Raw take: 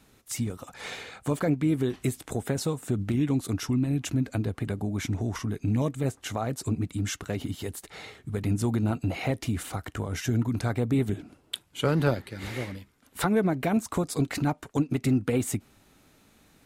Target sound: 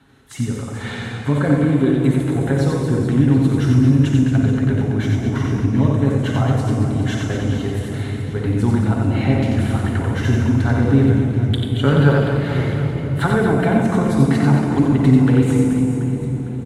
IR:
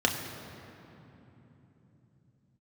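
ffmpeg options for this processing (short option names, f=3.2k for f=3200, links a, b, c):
-filter_complex "[0:a]aecho=1:1:90|225|427.5|731.2|1187:0.631|0.398|0.251|0.158|0.1[a];[1:a]atrim=start_sample=2205,asetrate=23814,aresample=44100[b];[a][b]afir=irnorm=-1:irlink=0,volume=-9.5dB"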